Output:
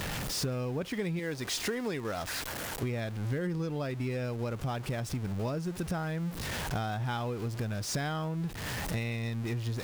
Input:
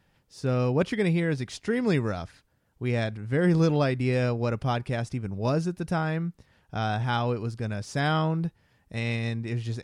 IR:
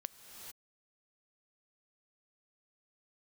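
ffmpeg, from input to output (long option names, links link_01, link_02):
-filter_complex "[0:a]aeval=exprs='val(0)+0.5*0.0211*sgn(val(0))':channel_layout=same,asettb=1/sr,asplit=3[link_01][link_02][link_03];[link_01]atrim=end=1.194[link_04];[link_02]atrim=start=1.19:end=2.83,asetpts=PTS-STARTPTS,afade=type=in:duration=0.004:curve=qsin,afade=type=out:start_time=1.636:duration=0.004:curve=qsin,bass=frequency=250:gain=-9,treble=frequency=4000:gain=1[link_05];[link_03]atrim=start=2.826[link_06];[link_04][link_05]acrossfade=duration=0.004:curve1=hsin:curve2=qsin[link_07];[link_07][link_06]acrossfade=duration=0.004:curve1=qsin:curve2=hsin,acompressor=threshold=-34dB:ratio=12,volume=4dB"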